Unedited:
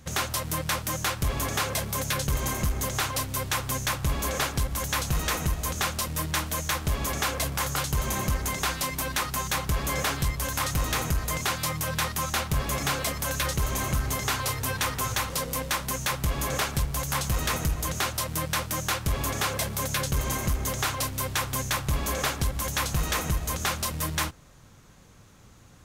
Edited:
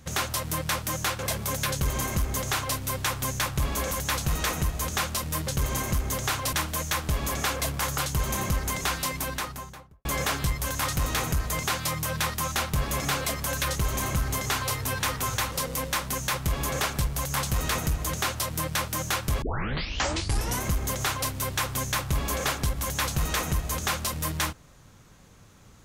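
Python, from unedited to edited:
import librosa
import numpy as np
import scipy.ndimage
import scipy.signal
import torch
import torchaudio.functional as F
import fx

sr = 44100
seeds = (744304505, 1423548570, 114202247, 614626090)

y = fx.studio_fade_out(x, sr, start_s=8.91, length_s=0.92)
y = fx.edit(y, sr, fx.cut(start_s=1.19, length_s=0.47),
    fx.duplicate(start_s=2.18, length_s=1.06, to_s=6.31),
    fx.cut(start_s=4.38, length_s=0.37),
    fx.tape_start(start_s=19.2, length_s=1.21), tone=tone)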